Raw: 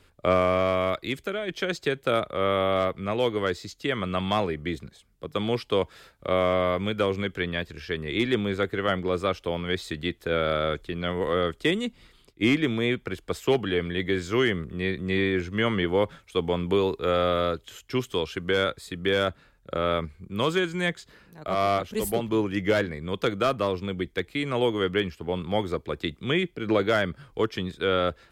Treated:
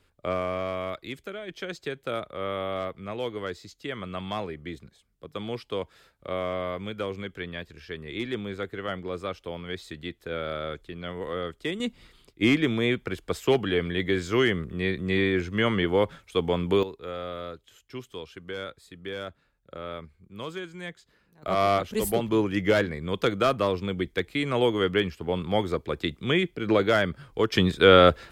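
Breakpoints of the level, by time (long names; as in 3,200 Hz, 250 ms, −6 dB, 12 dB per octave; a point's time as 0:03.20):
−7 dB
from 0:11.80 +0.5 dB
from 0:16.83 −11.5 dB
from 0:21.43 +1 dB
from 0:27.52 +9 dB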